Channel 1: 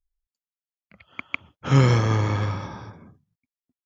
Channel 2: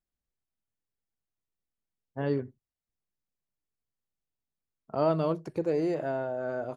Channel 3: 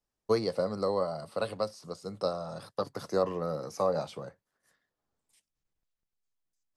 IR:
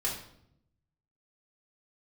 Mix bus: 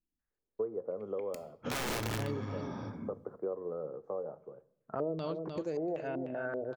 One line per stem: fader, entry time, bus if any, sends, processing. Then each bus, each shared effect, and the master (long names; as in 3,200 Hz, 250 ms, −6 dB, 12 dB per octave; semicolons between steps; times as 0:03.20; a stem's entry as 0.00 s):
0:01.31 −20.5 dB → 0:01.58 −13 dB → 0:02.51 −13 dB → 0:03.18 −1 dB, 0.00 s, send −15.5 dB, no echo send, parametric band 250 Hz +13 dB 0.77 octaves; wrap-around overflow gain 12.5 dB
−3.0 dB, 0.00 s, no send, echo send −11 dB, low-pass on a step sequencer 5.2 Hz 290–6,300 Hz
−13.5 dB, 0.30 s, send −22.5 dB, no echo send, Butterworth low-pass 1,500 Hz 36 dB per octave; parametric band 420 Hz +14 dB 0.99 octaves; automatic ducking −9 dB, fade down 1.05 s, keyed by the second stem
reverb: on, RT60 0.70 s, pre-delay 4 ms
echo: single-tap delay 303 ms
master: downward compressor 3 to 1, threshold −34 dBFS, peak gain reduction 10.5 dB